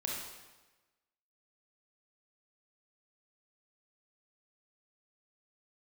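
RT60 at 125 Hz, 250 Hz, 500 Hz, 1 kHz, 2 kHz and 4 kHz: 1.1, 1.2, 1.2, 1.2, 1.1, 1.0 s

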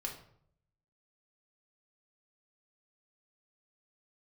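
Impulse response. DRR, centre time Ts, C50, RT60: -1.0 dB, 22 ms, 7.5 dB, 0.65 s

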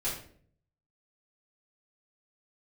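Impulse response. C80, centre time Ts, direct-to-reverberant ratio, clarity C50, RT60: 9.0 dB, 35 ms, -10.5 dB, 5.0 dB, 0.55 s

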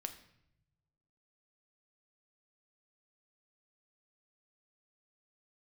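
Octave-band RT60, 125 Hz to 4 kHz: 1.6, 1.3, 0.85, 0.70, 0.70, 0.65 s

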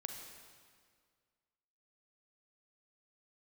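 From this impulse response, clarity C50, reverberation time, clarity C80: 4.0 dB, 1.9 s, 5.5 dB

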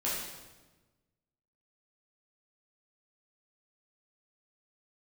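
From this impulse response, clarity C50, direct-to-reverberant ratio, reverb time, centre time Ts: 0.0 dB, -8.0 dB, 1.2 s, 73 ms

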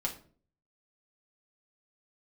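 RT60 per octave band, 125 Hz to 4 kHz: 0.65, 0.60, 0.50, 0.40, 0.35, 0.30 s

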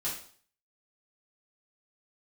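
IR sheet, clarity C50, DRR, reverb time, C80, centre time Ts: 5.0 dB, -8.5 dB, 0.50 s, 9.5 dB, 34 ms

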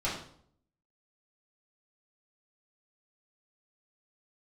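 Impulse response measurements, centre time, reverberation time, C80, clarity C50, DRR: 39 ms, 0.60 s, 8.0 dB, 4.5 dB, -8.5 dB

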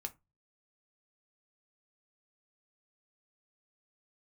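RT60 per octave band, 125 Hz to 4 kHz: 0.50, 0.30, 0.20, 0.20, 0.20, 0.15 s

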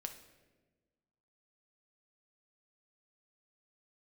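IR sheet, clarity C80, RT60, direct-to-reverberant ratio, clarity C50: 12.5 dB, 1.3 s, 5.5 dB, 9.5 dB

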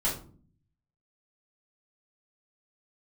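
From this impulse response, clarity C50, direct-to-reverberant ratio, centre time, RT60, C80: 7.0 dB, -10.0 dB, 29 ms, 0.45 s, 12.5 dB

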